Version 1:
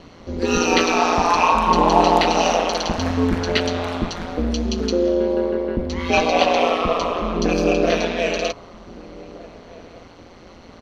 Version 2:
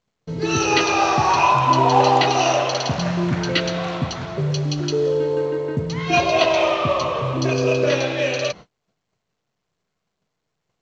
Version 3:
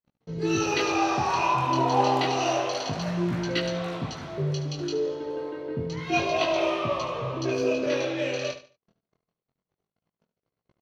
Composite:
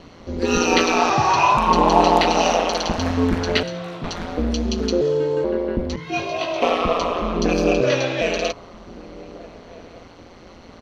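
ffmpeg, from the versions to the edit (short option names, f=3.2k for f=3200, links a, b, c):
-filter_complex "[1:a]asplit=3[a][b][c];[2:a]asplit=2[d][e];[0:a]asplit=6[f][g][h][i][j][k];[f]atrim=end=1.102[l];[a]atrim=start=1.098:end=1.572[m];[g]atrim=start=1.568:end=3.632[n];[d]atrim=start=3.628:end=4.042[o];[h]atrim=start=4.038:end=5.012[p];[b]atrim=start=5.008:end=5.442[q];[i]atrim=start=5.438:end=5.962[r];[e]atrim=start=5.958:end=6.622[s];[j]atrim=start=6.618:end=7.812[t];[c]atrim=start=7.808:end=8.212[u];[k]atrim=start=8.208[v];[l][m]acrossfade=d=0.004:c1=hsin:c2=hsin[w];[w][n]acrossfade=d=0.004:c1=hsin:c2=hsin[x];[x][o]acrossfade=d=0.004:c1=hsin:c2=hsin[y];[y][p]acrossfade=d=0.004:c1=hsin:c2=hsin[z];[z][q]acrossfade=d=0.004:c1=hsin:c2=hsin[aa];[aa][r]acrossfade=d=0.004:c1=hsin:c2=hsin[ab];[ab][s]acrossfade=d=0.004:c1=hsin:c2=hsin[ac];[ac][t]acrossfade=d=0.004:c1=hsin:c2=hsin[ad];[ad][u]acrossfade=d=0.004:c1=hsin:c2=hsin[ae];[ae][v]acrossfade=d=0.004:c1=hsin:c2=hsin"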